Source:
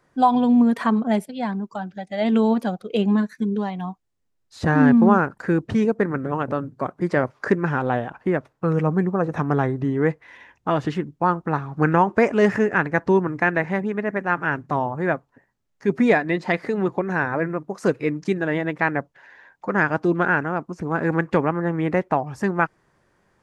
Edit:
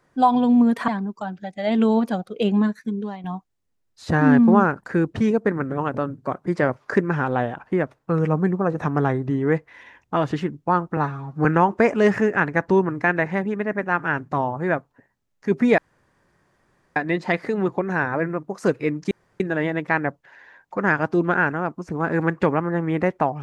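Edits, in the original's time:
0:00.88–0:01.42: remove
0:03.17–0:03.78: fade out, to −8.5 dB
0:11.51–0:11.83: time-stretch 1.5×
0:16.16: splice in room tone 1.18 s
0:18.31: splice in room tone 0.29 s

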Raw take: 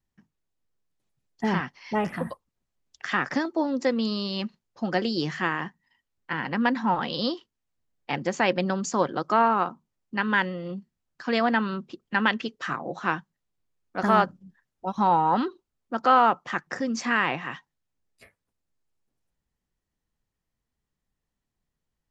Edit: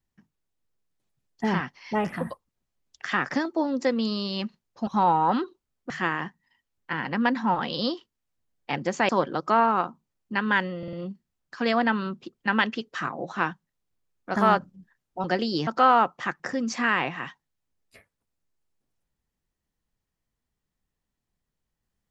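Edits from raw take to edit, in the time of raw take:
0:04.87–0:05.30: swap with 0:14.91–0:15.94
0:08.49–0:08.91: remove
0:10.60: stutter 0.05 s, 4 plays

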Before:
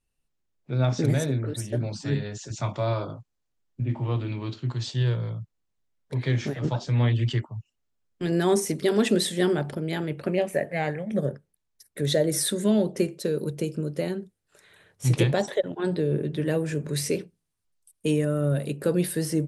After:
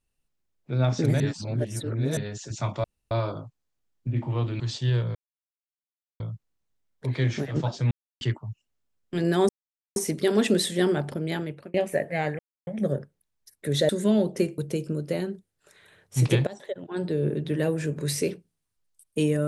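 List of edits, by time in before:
0:01.20–0:02.17: reverse
0:02.84: splice in room tone 0.27 s
0:04.33–0:04.73: remove
0:05.28: splice in silence 1.05 s
0:06.99–0:07.29: silence
0:08.57: splice in silence 0.47 s
0:09.96–0:10.35: fade out
0:11.00: splice in silence 0.28 s
0:12.22–0:12.49: remove
0:13.18–0:13.46: remove
0:15.35–0:16.16: fade in, from −19.5 dB

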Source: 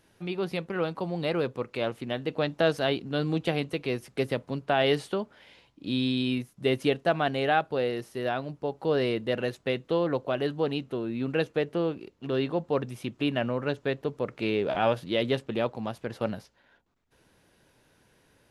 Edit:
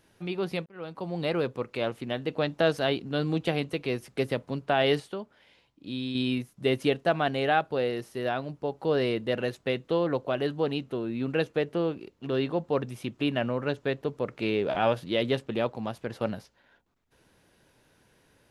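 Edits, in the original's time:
0:00.66–0:01.20: fade in
0:05.00–0:06.15: clip gain −6 dB

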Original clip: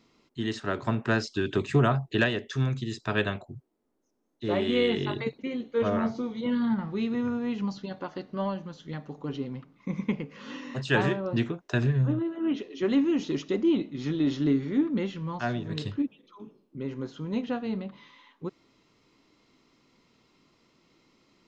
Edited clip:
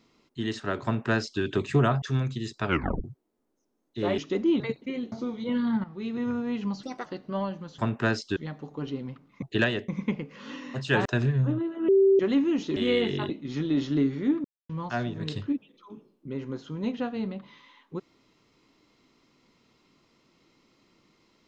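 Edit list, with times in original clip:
0:00.84–0:01.42: duplicate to 0:08.83
0:02.02–0:02.48: move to 0:09.89
0:03.13: tape stop 0.37 s
0:04.64–0:05.17: swap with 0:13.37–0:13.79
0:05.69–0:06.09: remove
0:06.81–0:07.26: fade in, from −12 dB
0:07.80–0:08.10: play speed 134%
0:11.06–0:11.66: remove
0:12.49–0:12.80: beep over 389 Hz −15.5 dBFS
0:14.94–0:15.19: silence

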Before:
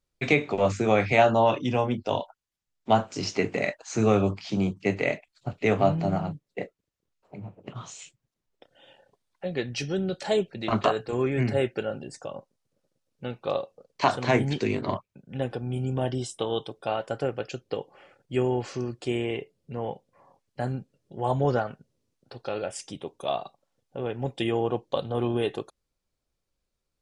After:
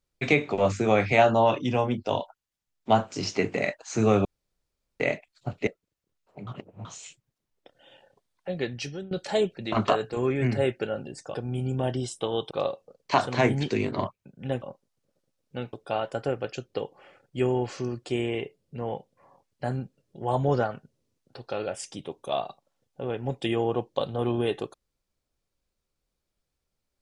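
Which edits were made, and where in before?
0:04.25–0:05.00: fill with room tone
0:05.67–0:06.63: remove
0:07.43–0:07.81: reverse
0:09.47–0:10.07: fade out equal-power, to −19.5 dB
0:12.30–0:13.41: swap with 0:15.52–0:16.69

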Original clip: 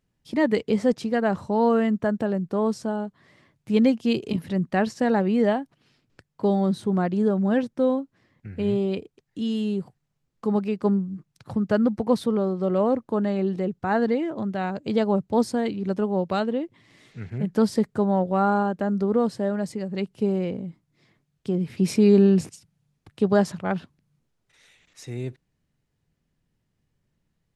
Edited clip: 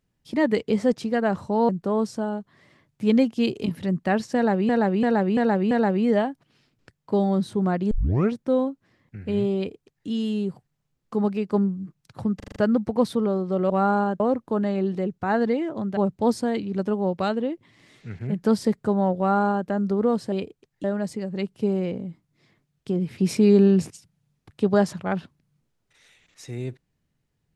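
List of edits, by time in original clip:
0:01.69–0:02.36: remove
0:05.02–0:05.36: repeat, 5 plays
0:07.22: tape start 0.43 s
0:08.87–0:09.39: duplicate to 0:19.43
0:11.67: stutter 0.04 s, 6 plays
0:14.58–0:15.08: remove
0:18.29–0:18.79: duplicate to 0:12.81

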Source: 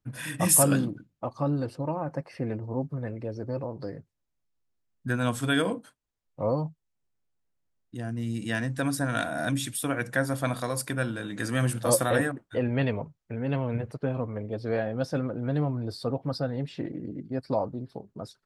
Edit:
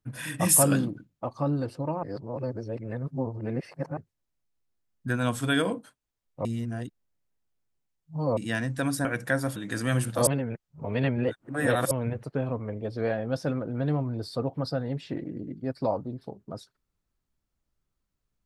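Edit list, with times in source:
0:02.03–0:03.97: reverse
0:06.45–0:08.37: reverse
0:09.05–0:09.91: remove
0:10.42–0:11.24: remove
0:11.95–0:13.59: reverse

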